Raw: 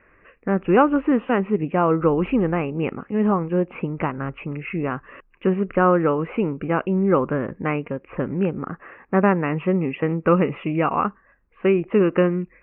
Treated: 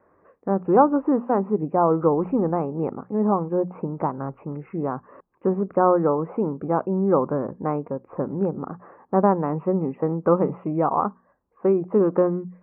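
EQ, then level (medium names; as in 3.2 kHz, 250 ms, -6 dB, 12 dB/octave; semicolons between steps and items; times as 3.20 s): high-pass 96 Hz 12 dB/octave; four-pole ladder low-pass 1.1 kHz, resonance 40%; hum notches 60/120/180/240 Hz; +6.0 dB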